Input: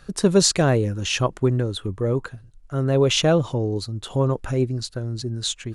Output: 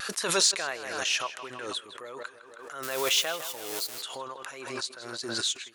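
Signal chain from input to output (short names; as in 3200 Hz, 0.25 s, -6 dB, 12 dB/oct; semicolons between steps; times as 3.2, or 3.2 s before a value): 2.83–4.01 switching spikes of -24 dBFS; HPF 1300 Hz 12 dB/oct; in parallel at -7 dB: soft clip -20.5 dBFS, distortion -10 dB; on the sum: vibrato 1.6 Hz 41 cents; on a send: tape echo 0.159 s, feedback 60%, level -12.5 dB, low-pass 3300 Hz; on the sum: backwards sustainer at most 42 dB/s; gain -5.5 dB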